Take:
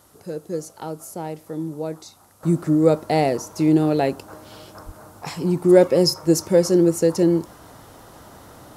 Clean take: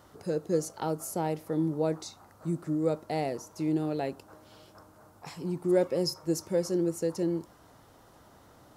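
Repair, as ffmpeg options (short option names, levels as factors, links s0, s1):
-filter_complex "[0:a]asplit=3[s0][s1][s2];[s0]afade=t=out:st=4.85:d=0.02[s3];[s1]highpass=f=140:w=0.5412,highpass=f=140:w=1.3066,afade=t=in:st=4.85:d=0.02,afade=t=out:st=4.97:d=0.02[s4];[s2]afade=t=in:st=4.97:d=0.02[s5];[s3][s4][s5]amix=inputs=3:normalize=0,agate=range=0.0891:threshold=0.0112,asetnsamples=n=441:p=0,asendcmd='2.43 volume volume -12dB',volume=1"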